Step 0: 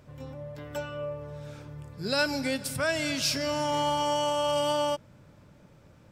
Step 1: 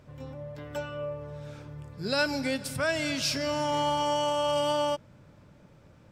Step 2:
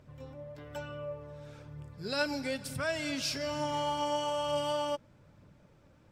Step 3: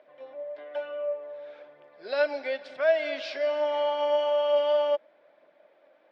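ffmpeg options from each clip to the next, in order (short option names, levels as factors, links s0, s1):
-af "highshelf=f=8200:g=-6"
-af "aphaser=in_gain=1:out_gain=1:delay=3.9:decay=0.28:speed=1.1:type=triangular,volume=0.531"
-af "highpass=f=430:w=0.5412,highpass=f=430:w=1.3066,equalizer=f=440:t=q:w=4:g=-7,equalizer=f=640:t=q:w=4:g=8,equalizer=f=920:t=q:w=4:g=-6,equalizer=f=1300:t=q:w=4:g=-8,equalizer=f=2700:t=q:w=4:g=-6,lowpass=f=3200:w=0.5412,lowpass=f=3200:w=1.3066,volume=2.24"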